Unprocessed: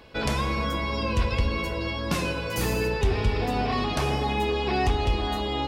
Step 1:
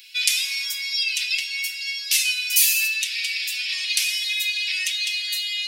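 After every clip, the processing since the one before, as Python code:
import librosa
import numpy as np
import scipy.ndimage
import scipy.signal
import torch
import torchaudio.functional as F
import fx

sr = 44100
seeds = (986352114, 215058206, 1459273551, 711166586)

y = scipy.signal.sosfilt(scipy.signal.butter(6, 2200.0, 'highpass', fs=sr, output='sos'), x)
y = fx.tilt_eq(y, sr, slope=4.0)
y = y + 0.6 * np.pad(y, (int(5.3 * sr / 1000.0), 0))[:len(y)]
y = F.gain(torch.from_numpy(y), 4.5).numpy()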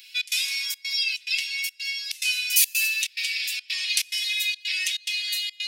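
y = fx.echo_feedback(x, sr, ms=207, feedback_pct=39, wet_db=-19.5)
y = fx.step_gate(y, sr, bpm=142, pattern='xx.xxxx.x', floor_db=-24.0, edge_ms=4.5)
y = F.gain(torch.from_numpy(y), -1.5).numpy()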